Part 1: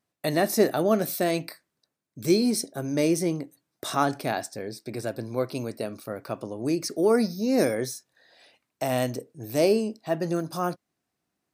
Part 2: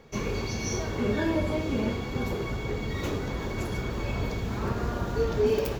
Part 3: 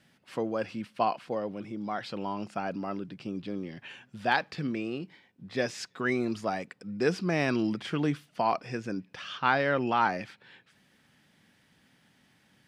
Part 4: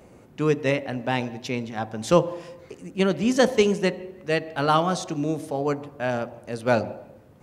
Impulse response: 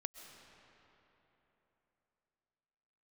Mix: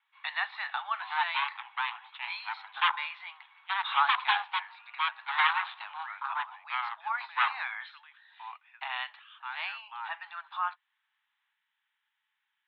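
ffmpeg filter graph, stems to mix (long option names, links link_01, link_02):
-filter_complex "[0:a]volume=1.5dB[link_01];[1:a]volume=-19.5dB[link_02];[2:a]volume=-13.5dB[link_03];[3:a]equalizer=frequency=2000:width=0.97:gain=-3,aeval=exprs='0.631*(cos(1*acos(clip(val(0)/0.631,-1,1)))-cos(1*PI/2))+0.316*(cos(8*acos(clip(val(0)/0.631,-1,1)))-cos(8*PI/2))':channel_layout=same,adelay=700,volume=-7.5dB[link_04];[link_01][link_02][link_03][link_04]amix=inputs=4:normalize=0,asuperpass=centerf=1800:order=20:qfactor=0.61"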